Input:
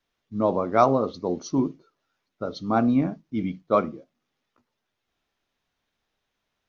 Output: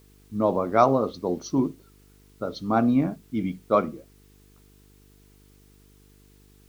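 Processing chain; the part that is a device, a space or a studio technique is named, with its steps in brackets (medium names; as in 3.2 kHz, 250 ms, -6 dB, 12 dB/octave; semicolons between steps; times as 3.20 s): video cassette with head-switching buzz (mains buzz 50 Hz, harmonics 9, -56 dBFS -4 dB/octave; white noise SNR 36 dB)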